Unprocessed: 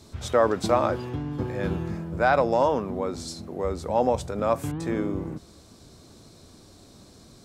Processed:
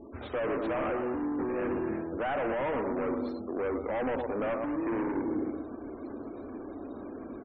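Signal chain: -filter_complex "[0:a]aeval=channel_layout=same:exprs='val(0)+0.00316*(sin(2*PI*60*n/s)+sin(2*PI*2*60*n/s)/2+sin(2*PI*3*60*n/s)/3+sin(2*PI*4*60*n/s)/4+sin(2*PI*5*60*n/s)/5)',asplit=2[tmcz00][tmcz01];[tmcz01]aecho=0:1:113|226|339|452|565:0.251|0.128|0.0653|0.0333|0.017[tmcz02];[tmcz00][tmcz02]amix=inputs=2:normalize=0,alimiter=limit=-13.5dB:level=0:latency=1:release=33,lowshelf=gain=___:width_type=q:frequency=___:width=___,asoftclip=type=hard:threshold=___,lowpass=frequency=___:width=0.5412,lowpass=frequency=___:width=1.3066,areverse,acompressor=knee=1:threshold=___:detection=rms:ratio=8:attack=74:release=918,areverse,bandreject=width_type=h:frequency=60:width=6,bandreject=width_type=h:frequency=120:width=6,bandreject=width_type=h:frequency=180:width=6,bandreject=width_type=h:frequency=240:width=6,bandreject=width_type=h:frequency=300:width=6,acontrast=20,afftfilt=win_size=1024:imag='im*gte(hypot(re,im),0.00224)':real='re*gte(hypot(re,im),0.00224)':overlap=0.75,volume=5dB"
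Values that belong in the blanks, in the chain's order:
-9, 210, 3, -28dB, 2600, 2600, -40dB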